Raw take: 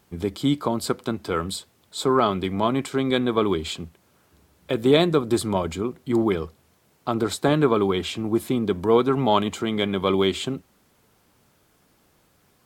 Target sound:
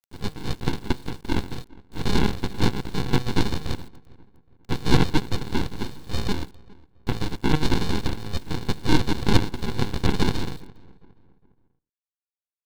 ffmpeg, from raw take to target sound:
ffmpeg -i in.wav -filter_complex "[0:a]aemphasis=mode=production:type=riaa,acontrast=22,equalizer=frequency=220:width=1.2:gain=-3.5,aecho=1:1:2.1:0.59,bandreject=frequency=379.3:width_type=h:width=4,bandreject=frequency=758.6:width_type=h:width=4,bandreject=frequency=1137.9:width_type=h:width=4,bandreject=frequency=1517.2:width_type=h:width=4,bandreject=frequency=1896.5:width_type=h:width=4,aresample=8000,acrusher=samples=13:mix=1:aa=0.000001,aresample=44100,aeval=exprs='abs(val(0))':channel_layout=same,acrusher=bits=7:mix=0:aa=0.000001,asplit=2[link_01][link_02];[link_02]adelay=409,lowpass=frequency=1900:poles=1,volume=-23dB,asplit=2[link_03][link_04];[link_04]adelay=409,lowpass=frequency=1900:poles=1,volume=0.39,asplit=2[link_05][link_06];[link_06]adelay=409,lowpass=frequency=1900:poles=1,volume=0.39[link_07];[link_03][link_05][link_07]amix=inputs=3:normalize=0[link_08];[link_01][link_08]amix=inputs=2:normalize=0,volume=-1dB" out.wav

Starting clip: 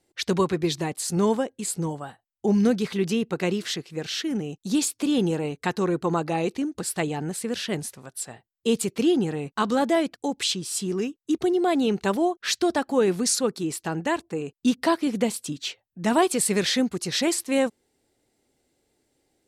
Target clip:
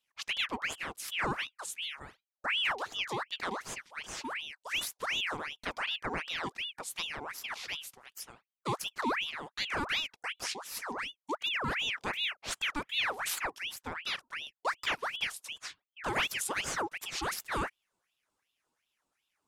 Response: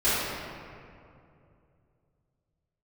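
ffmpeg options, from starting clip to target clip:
-af "aeval=exprs='val(0)*sin(2*PI*1900*n/s+1900*0.7/2.7*sin(2*PI*2.7*n/s))':channel_layout=same,volume=-8.5dB"

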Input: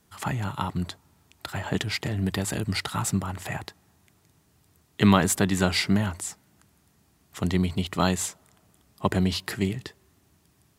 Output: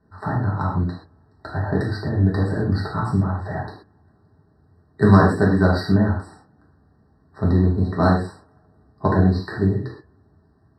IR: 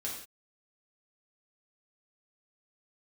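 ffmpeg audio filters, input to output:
-filter_complex "[0:a]adynamicsmooth=sensitivity=0.5:basefreq=1800[link_01];[1:a]atrim=start_sample=2205,afade=type=out:start_time=0.19:duration=0.01,atrim=end_sample=8820[link_02];[link_01][link_02]afir=irnorm=-1:irlink=0,afftfilt=real='re*eq(mod(floor(b*sr/1024/1900),2),0)':imag='im*eq(mod(floor(b*sr/1024/1900),2),0)':win_size=1024:overlap=0.75,volume=6dB"

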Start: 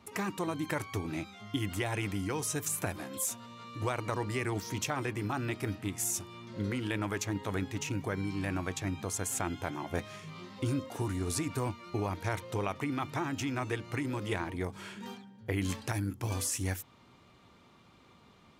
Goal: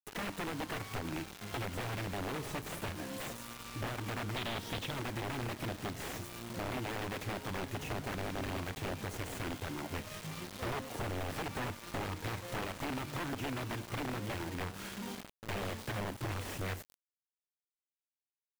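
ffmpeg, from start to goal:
ffmpeg -i in.wav -filter_complex "[0:a]asplit=2[link_01][link_02];[link_02]acrusher=samples=36:mix=1:aa=0.000001,volume=-5dB[link_03];[link_01][link_03]amix=inputs=2:normalize=0,aeval=exprs='(mod(18.8*val(0)+1,2)-1)/18.8':channel_layout=same,asettb=1/sr,asplit=3[link_04][link_05][link_06];[link_04]atrim=end=4.364[link_07];[link_05]atrim=start=4.36:end=4.91,asetpts=PTS-STARTPTS,afade=type=in:duration=0.004:curve=qsin,afade=type=out:start_time=0.546:duration=0.004:curve=qsin,equalizer=frequency=3500:width_type=o:width=0.7:gain=11.5[link_08];[link_06]atrim=start=4.906[link_09];[link_07][link_08]acrossfade=duration=0.004:curve1=hsin:curve2=qsin[link_10];[link_10][link_09]acrossfade=duration=0.004:curve1=qsin:curve2=hsin,aecho=1:1:106|212|318|424:0.0944|0.0481|0.0246|0.0125,acrossover=split=3600[link_11][link_12];[link_12]acompressor=threshold=-49dB:ratio=4:attack=1:release=60[link_13];[link_11][link_13]amix=inputs=2:normalize=0,acrusher=bits=6:mix=0:aa=0.000001,acompressor=threshold=-37dB:ratio=2,volume=-1.5dB" out.wav

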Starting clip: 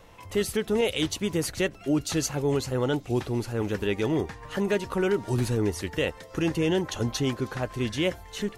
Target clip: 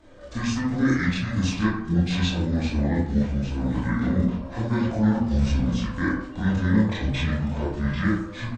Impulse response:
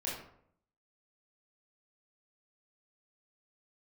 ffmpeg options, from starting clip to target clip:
-filter_complex "[0:a]asetrate=25476,aresample=44100,atempo=1.73107[link_01];[1:a]atrim=start_sample=2205[link_02];[link_01][link_02]afir=irnorm=-1:irlink=0"

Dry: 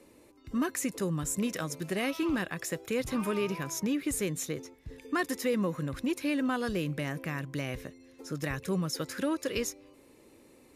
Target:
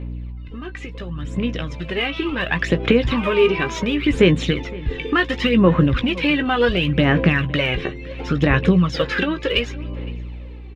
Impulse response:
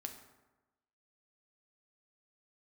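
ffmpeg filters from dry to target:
-filter_complex "[0:a]aemphasis=mode=reproduction:type=50fm,acompressor=threshold=-35dB:ratio=6,lowpass=frequency=3100:width_type=q:width=3.2,dynaudnorm=framelen=630:gausssize=7:maxgain=15dB,aeval=exprs='val(0)+0.01*(sin(2*PI*60*n/s)+sin(2*PI*2*60*n/s)/2+sin(2*PI*3*60*n/s)/3+sin(2*PI*4*60*n/s)/4+sin(2*PI*5*60*n/s)/5)':channel_layout=same,aphaser=in_gain=1:out_gain=1:delay=2.6:decay=0.58:speed=0.7:type=sinusoidal,asplit=2[link_01][link_02];[link_02]adelay=17,volume=-9.5dB[link_03];[link_01][link_03]amix=inputs=2:normalize=0,asplit=2[link_04][link_05];[link_05]adelay=513.1,volume=-20dB,highshelf=frequency=4000:gain=-11.5[link_06];[link_04][link_06]amix=inputs=2:normalize=0,volume=3dB"

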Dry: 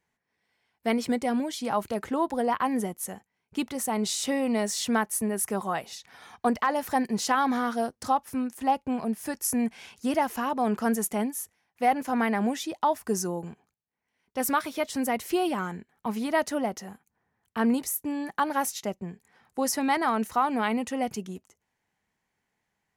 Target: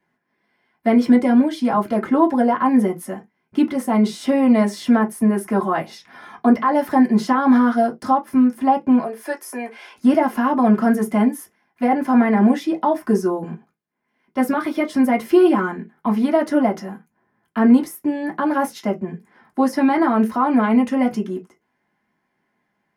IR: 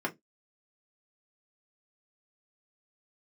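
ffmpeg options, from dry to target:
-filter_complex "[0:a]asettb=1/sr,asplit=3[link_01][link_02][link_03];[link_01]atrim=end=9.014[link_04];[link_02]atrim=start=9.01:end=9.96,asetpts=PTS-STARTPTS,afade=type=in:duration=0.004:curve=qsin,afade=type=out:start_time=0.946:duration=0.004:curve=qsin,highpass=frequency=420:width=0.5412,highpass=frequency=420:width=1.3066[link_05];[link_03]atrim=start=9.956[link_06];[link_04][link_05]acrossfade=duration=0.004:curve1=hsin:curve2=qsin[link_07];[link_07][link_06]acrossfade=duration=0.004:curve1=qsin:curve2=hsin,acrossover=split=710[link_08][link_09];[link_09]alimiter=level_in=0.5dB:limit=-24dB:level=0:latency=1:release=58,volume=-0.5dB[link_10];[link_08][link_10]amix=inputs=2:normalize=0[link_11];[1:a]atrim=start_sample=2205,afade=type=out:start_time=0.15:duration=0.01,atrim=end_sample=7056,asetrate=43659,aresample=44100[link_12];[link_11][link_12]afir=irnorm=-1:irlink=0,volume=2dB"

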